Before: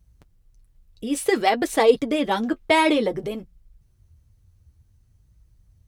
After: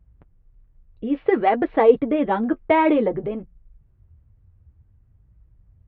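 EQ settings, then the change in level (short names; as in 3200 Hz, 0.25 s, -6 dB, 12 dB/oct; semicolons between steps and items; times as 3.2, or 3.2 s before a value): Gaussian blur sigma 4.1 samples; +2.5 dB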